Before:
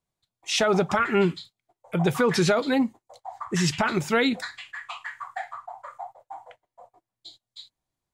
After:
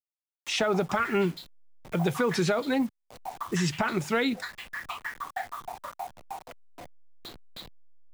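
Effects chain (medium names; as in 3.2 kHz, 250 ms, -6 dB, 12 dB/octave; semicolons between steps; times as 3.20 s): send-on-delta sampling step -42 dBFS; three bands compressed up and down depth 40%; trim -3.5 dB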